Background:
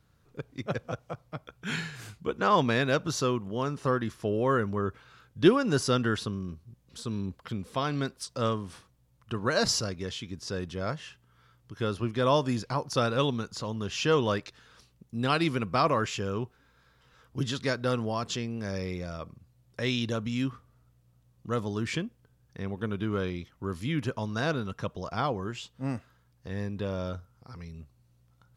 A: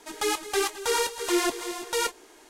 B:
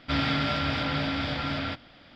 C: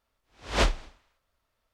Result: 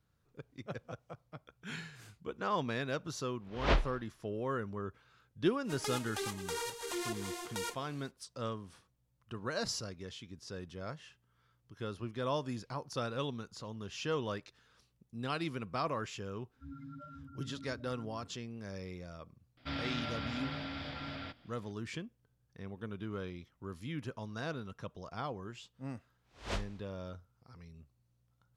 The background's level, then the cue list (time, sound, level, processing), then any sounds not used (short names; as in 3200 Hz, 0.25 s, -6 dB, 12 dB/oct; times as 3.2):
background -10.5 dB
3.1 add C -4 dB + air absorption 200 m
5.63 add A -8 dB, fades 0.05 s + compressor 3:1, threshold -28 dBFS
16.53 add B -17 dB + loudest bins only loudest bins 4
19.57 add B -12.5 dB
25.92 add C -14.5 dB